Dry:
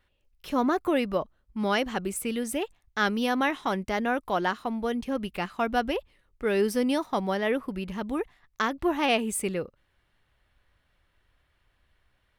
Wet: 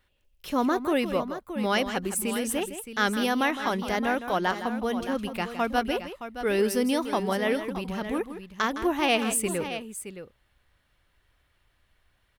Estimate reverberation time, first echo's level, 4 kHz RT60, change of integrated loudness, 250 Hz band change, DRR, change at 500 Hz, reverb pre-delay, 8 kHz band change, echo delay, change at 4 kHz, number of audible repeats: no reverb, -11.0 dB, no reverb, +1.0 dB, +0.5 dB, no reverb, +0.5 dB, no reverb, +5.0 dB, 162 ms, +2.5 dB, 2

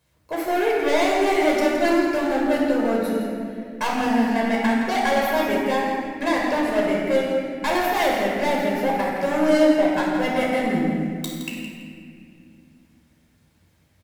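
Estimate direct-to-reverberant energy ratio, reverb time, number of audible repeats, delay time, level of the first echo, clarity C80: -3.5 dB, 2.2 s, 1, 168 ms, -9.0 dB, 1.0 dB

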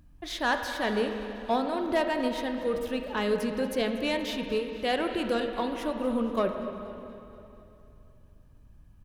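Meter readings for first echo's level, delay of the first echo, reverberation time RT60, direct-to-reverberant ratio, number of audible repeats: -18.0 dB, 239 ms, 2.9 s, 4.5 dB, 4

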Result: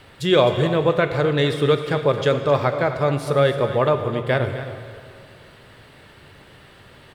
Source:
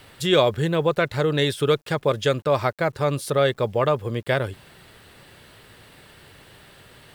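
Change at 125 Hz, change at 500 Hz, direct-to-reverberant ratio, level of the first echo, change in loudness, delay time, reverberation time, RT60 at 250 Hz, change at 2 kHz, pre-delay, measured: +3.0 dB, +3.0 dB, 6.5 dB, -12.5 dB, +2.5 dB, 261 ms, 2.3 s, 2.4 s, +1.5 dB, 7 ms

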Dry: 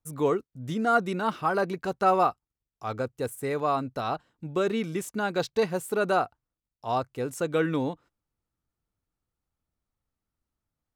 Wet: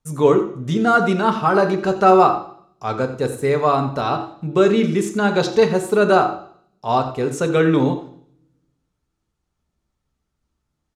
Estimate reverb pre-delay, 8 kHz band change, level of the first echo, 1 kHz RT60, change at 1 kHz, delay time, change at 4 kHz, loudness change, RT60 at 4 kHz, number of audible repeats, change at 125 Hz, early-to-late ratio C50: 3 ms, +7.0 dB, -14.0 dB, 0.55 s, +9.0 dB, 88 ms, +9.5 dB, +10.0 dB, 0.65 s, 1, +12.0 dB, 10.0 dB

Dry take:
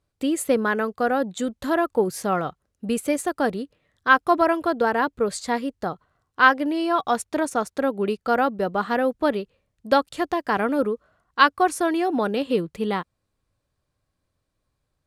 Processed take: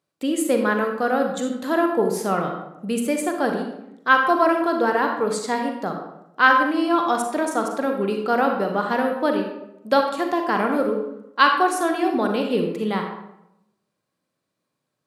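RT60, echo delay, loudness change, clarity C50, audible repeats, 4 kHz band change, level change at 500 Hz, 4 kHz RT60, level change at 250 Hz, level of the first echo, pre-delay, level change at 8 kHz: 0.80 s, no echo, +1.5 dB, 4.5 dB, no echo, +1.5 dB, +1.5 dB, 0.55 s, +2.0 dB, no echo, 35 ms, +1.0 dB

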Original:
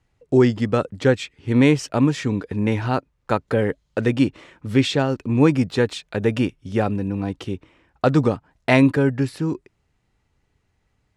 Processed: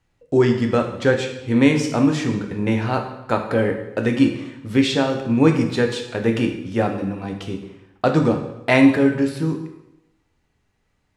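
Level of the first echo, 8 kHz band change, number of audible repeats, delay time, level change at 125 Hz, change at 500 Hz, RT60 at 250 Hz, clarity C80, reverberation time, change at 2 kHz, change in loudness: no echo, +1.5 dB, no echo, no echo, -1.5 dB, +1.0 dB, 0.85 s, 10.0 dB, 0.85 s, +2.0 dB, +1.0 dB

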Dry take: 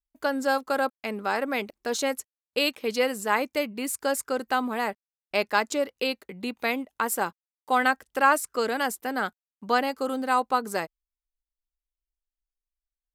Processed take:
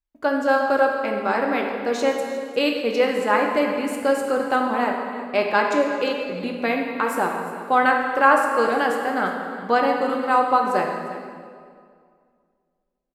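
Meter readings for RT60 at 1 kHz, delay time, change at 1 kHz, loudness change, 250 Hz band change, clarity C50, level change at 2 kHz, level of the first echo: 2.0 s, 353 ms, +6.5 dB, +5.5 dB, +6.5 dB, 3.0 dB, +4.5 dB, -15.5 dB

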